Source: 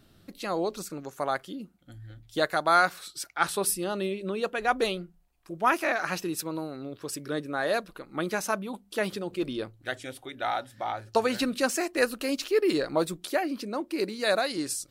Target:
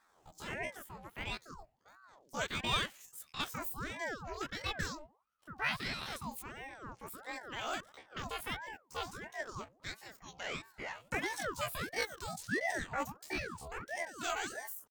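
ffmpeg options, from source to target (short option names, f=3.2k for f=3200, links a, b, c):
-af "flanger=delay=20:depth=3.8:speed=0.7,asetrate=76340,aresample=44100,atempo=0.577676,aeval=exprs='val(0)*sin(2*PI*820*n/s+820*0.65/1.5*sin(2*PI*1.5*n/s))':c=same,volume=-5.5dB"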